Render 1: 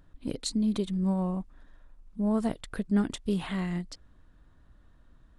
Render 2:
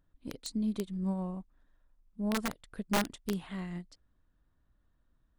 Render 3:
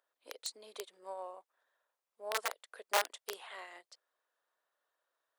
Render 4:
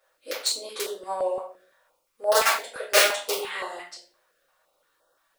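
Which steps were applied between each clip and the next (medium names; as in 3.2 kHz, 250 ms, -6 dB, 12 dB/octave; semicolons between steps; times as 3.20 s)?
integer overflow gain 18.5 dB; upward expansion 1.5:1, over -43 dBFS; trim -3.5 dB
steep high-pass 470 Hz 36 dB/octave; trim +1 dB
simulated room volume 41 m³, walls mixed, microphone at 2.3 m; step-sequenced notch 5.8 Hz 260–2300 Hz; trim +6 dB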